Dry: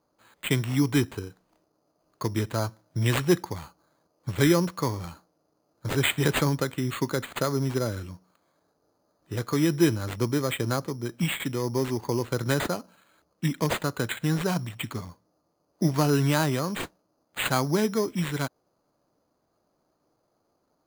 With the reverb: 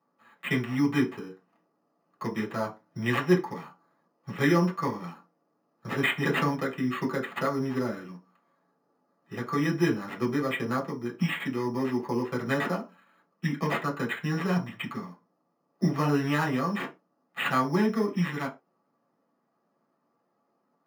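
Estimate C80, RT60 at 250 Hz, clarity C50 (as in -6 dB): 22.5 dB, n/a, 15.0 dB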